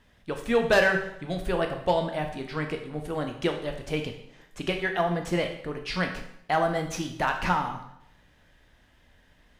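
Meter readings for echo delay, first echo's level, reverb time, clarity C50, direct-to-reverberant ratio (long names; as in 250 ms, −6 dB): no echo audible, no echo audible, 0.75 s, 8.0 dB, 4.0 dB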